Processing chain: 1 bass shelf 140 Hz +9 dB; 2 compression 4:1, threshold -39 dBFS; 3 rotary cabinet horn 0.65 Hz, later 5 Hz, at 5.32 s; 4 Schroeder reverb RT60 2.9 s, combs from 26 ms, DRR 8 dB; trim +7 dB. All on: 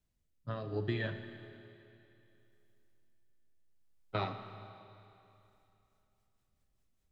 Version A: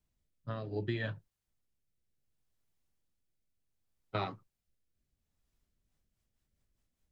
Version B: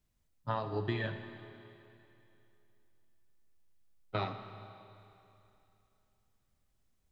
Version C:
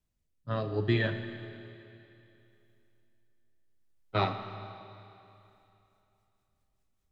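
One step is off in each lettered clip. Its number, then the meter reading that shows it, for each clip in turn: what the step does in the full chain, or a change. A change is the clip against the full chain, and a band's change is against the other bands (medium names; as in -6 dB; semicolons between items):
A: 4, momentary loudness spread change -6 LU; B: 3, 1 kHz band +3.0 dB; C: 2, mean gain reduction 6.0 dB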